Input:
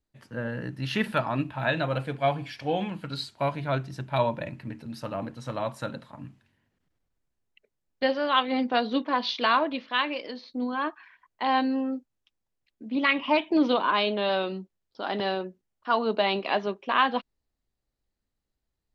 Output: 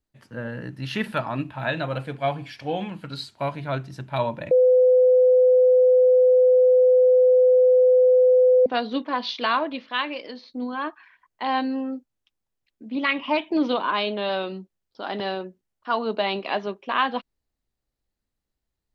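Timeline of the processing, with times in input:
4.51–8.66 s: bleep 506 Hz -12.5 dBFS

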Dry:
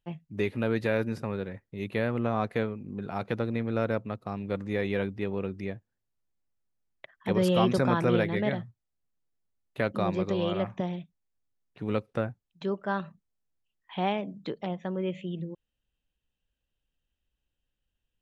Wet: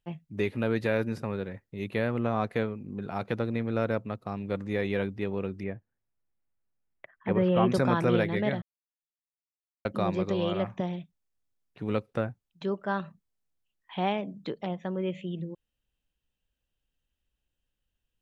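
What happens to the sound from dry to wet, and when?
5.63–7.72 s: low-pass 2.5 kHz 24 dB/octave
8.62–9.85 s: mute

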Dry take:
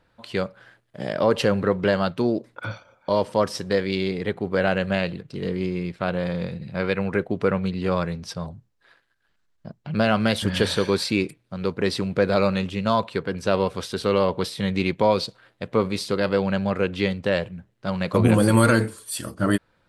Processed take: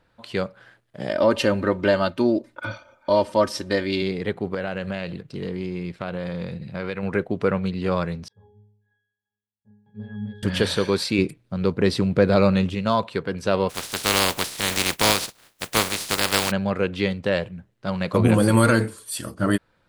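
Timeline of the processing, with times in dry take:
1.09–4.02 s: comb 3.3 ms
4.54–7.03 s: compression 3:1, threshold -25 dBFS
8.28–10.43 s: pitch-class resonator G#, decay 0.73 s
11.18–12.75 s: bass shelf 370 Hz +6.5 dB
13.69–16.50 s: spectral contrast reduction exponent 0.25

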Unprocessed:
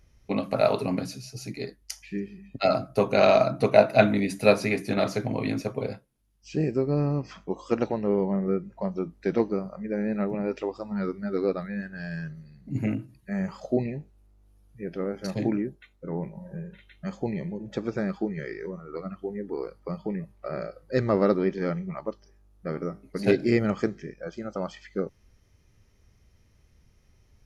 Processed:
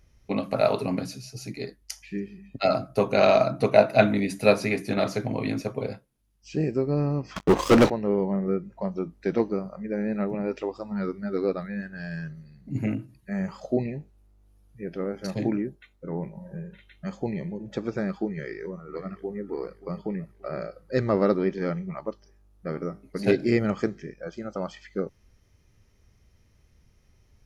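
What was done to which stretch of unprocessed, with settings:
7.36–7.90 s: waveshaping leveller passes 5
18.30–19.43 s: echo throw 580 ms, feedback 40%, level -16.5 dB

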